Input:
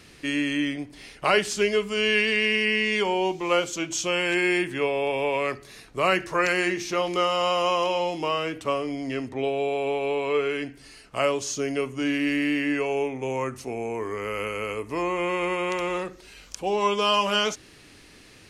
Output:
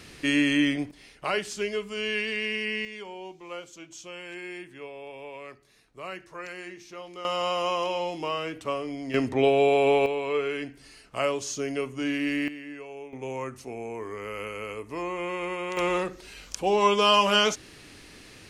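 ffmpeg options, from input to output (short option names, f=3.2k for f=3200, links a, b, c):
-af "asetnsamples=n=441:p=0,asendcmd='0.91 volume volume -7dB;2.85 volume volume -16dB;7.25 volume volume -4dB;9.14 volume volume 5.5dB;10.06 volume volume -3dB;12.48 volume volume -15dB;13.13 volume volume -5.5dB;15.77 volume volume 2dB',volume=3dB"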